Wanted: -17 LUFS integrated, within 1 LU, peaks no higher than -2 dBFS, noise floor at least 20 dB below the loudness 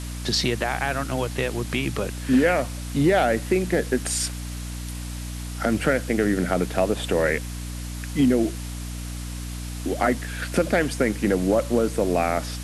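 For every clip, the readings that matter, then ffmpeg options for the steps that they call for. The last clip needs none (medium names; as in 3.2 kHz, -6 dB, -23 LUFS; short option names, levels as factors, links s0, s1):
hum 60 Hz; highest harmonic 300 Hz; hum level -30 dBFS; noise floor -33 dBFS; noise floor target -45 dBFS; loudness -24.5 LUFS; peak level -6.5 dBFS; loudness target -17.0 LUFS
-> -af "bandreject=f=60:t=h:w=4,bandreject=f=120:t=h:w=4,bandreject=f=180:t=h:w=4,bandreject=f=240:t=h:w=4,bandreject=f=300:t=h:w=4"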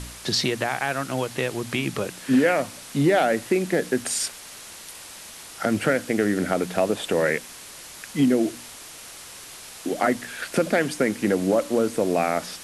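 hum not found; noise floor -42 dBFS; noise floor target -44 dBFS
-> -af "afftdn=nr=6:nf=-42"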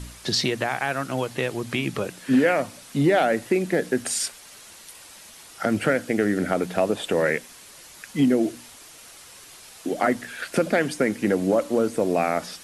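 noise floor -46 dBFS; loudness -24.0 LUFS; peak level -7.0 dBFS; loudness target -17.0 LUFS
-> -af "volume=2.24,alimiter=limit=0.794:level=0:latency=1"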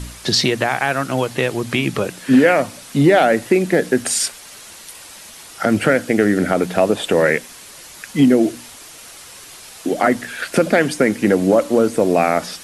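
loudness -17.0 LUFS; peak level -2.0 dBFS; noise floor -39 dBFS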